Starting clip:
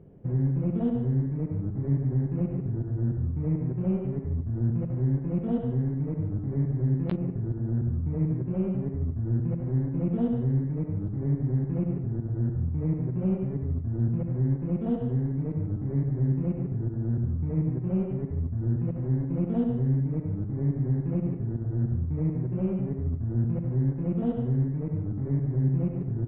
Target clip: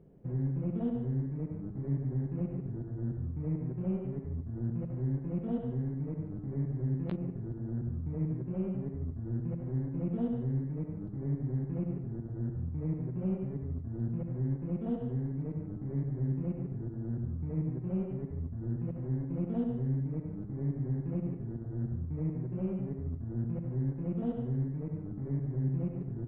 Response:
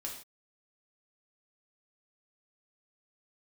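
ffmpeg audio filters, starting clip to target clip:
-af "equalizer=frequency=100:width=6.8:gain=-13,volume=-6dB"

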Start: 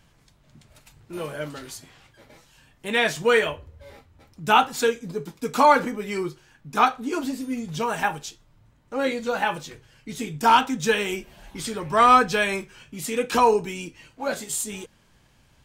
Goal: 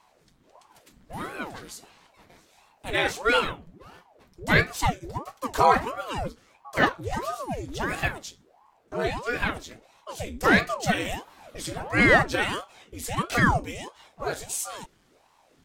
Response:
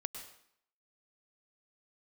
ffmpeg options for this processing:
-af "bandreject=frequency=2700:width=14,aeval=exprs='val(0)*sin(2*PI*530*n/s+530*0.85/1.5*sin(2*PI*1.5*n/s))':channel_layout=same"

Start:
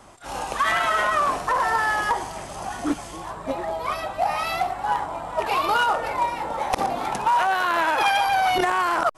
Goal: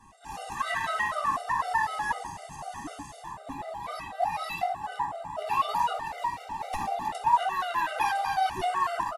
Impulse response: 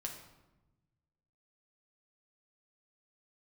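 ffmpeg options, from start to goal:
-filter_complex "[0:a]aecho=1:1:1.1:0.6,asettb=1/sr,asplit=3[link_01][link_02][link_03];[link_01]atrim=end=5.944[link_04];[link_02]atrim=start=5.94:end=6.95,asetpts=PTS-STARTPTS,afade=type=in:duration=0.004:curve=qsin,afade=type=out:start_time=1.006:duration=0.004:curve=qsin,aeval=exprs='sgn(val(0))*max(abs(val(0))-0.0141,0)':channel_layout=same[link_05];[link_03]atrim=start=6.946[link_06];[link_04][link_05]acrossfade=duration=0.004:curve1=hsin:curve2=qsin[link_07];[link_07][link_06]acrossfade=duration=0.004:curve1=qsin:curve2=hsin[link_08];[1:a]atrim=start_sample=2205,atrim=end_sample=3087,asetrate=29547,aresample=44100[link_09];[link_08][link_09]afir=irnorm=-1:irlink=0,afftfilt=real='re*gt(sin(2*PI*4*pts/sr)*(1-2*mod(floor(b*sr/1024/390),2)),0)':imag='im*gt(sin(2*PI*4*pts/sr)*(1-2*mod(floor(b*sr/1024/390),2)),0)':win_size=1024:overlap=0.75,volume=-6.5dB"

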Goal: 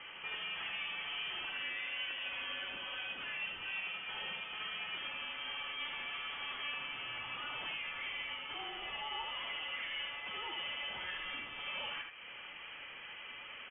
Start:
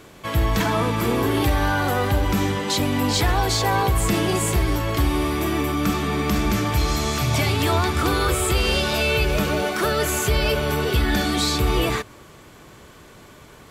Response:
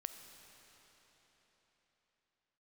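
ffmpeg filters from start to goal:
-af "highpass=520,acompressor=threshold=-40dB:ratio=3,asoftclip=type=tanh:threshold=-39dB,flanger=delay=3.4:depth=2.9:regen=66:speed=1.2:shape=sinusoidal,aecho=1:1:77:0.562,lowpass=frequency=3000:width_type=q:width=0.5098,lowpass=frequency=3000:width_type=q:width=0.6013,lowpass=frequency=3000:width_type=q:width=0.9,lowpass=frequency=3000:width_type=q:width=2.563,afreqshift=-3500,volume=5dB"

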